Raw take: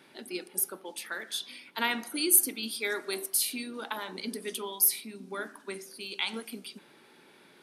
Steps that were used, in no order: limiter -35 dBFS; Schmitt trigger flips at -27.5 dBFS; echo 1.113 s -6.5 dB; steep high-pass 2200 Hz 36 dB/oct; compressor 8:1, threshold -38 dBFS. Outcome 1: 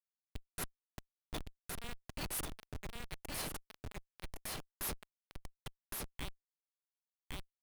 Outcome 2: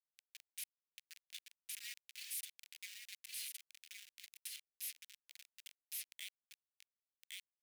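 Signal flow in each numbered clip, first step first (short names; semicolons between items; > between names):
steep high-pass > Schmitt trigger > echo > limiter > compressor; Schmitt trigger > echo > compressor > steep high-pass > limiter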